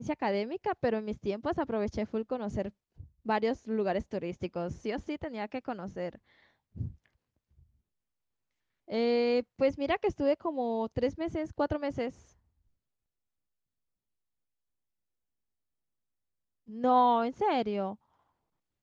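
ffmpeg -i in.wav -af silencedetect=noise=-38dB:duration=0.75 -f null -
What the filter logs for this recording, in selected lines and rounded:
silence_start: 6.88
silence_end: 8.90 | silence_duration: 2.02
silence_start: 12.10
silence_end: 16.73 | silence_duration: 4.64
silence_start: 17.94
silence_end: 18.83 | silence_duration: 0.89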